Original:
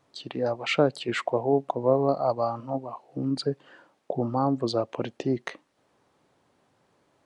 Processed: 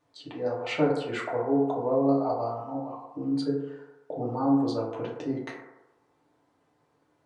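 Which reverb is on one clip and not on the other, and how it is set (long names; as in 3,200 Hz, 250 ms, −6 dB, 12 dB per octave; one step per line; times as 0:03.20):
feedback delay network reverb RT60 1 s, low-frequency decay 0.7×, high-frequency decay 0.3×, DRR −5 dB
level −9.5 dB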